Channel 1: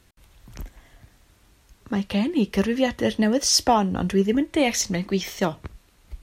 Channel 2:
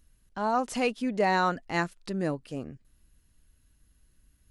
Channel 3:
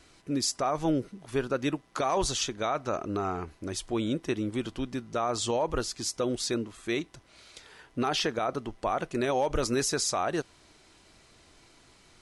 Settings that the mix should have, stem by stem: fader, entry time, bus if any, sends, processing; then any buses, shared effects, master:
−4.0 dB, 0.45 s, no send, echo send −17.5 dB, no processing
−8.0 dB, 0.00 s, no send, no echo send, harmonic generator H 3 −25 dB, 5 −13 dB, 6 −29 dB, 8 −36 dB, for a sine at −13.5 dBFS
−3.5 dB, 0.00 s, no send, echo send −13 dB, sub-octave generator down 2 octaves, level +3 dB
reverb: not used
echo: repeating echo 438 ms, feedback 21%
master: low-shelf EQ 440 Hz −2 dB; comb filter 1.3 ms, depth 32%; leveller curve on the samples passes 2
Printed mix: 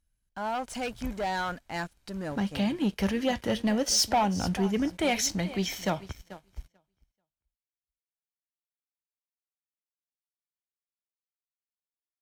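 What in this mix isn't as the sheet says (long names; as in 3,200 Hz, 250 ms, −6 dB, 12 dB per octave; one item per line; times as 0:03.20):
stem 1 −4.0 dB → −10.5 dB
stem 2 −8.0 dB → −15.5 dB
stem 3: muted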